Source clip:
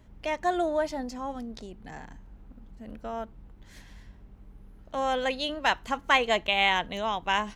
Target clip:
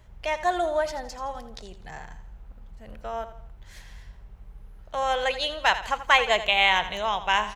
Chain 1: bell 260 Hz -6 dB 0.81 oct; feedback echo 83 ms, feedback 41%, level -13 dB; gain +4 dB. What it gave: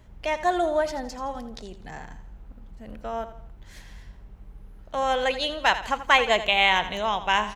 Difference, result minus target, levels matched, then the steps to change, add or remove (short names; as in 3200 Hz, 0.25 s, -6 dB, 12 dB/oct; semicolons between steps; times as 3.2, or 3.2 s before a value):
250 Hz band +6.0 dB
change: bell 260 Hz -16.5 dB 0.81 oct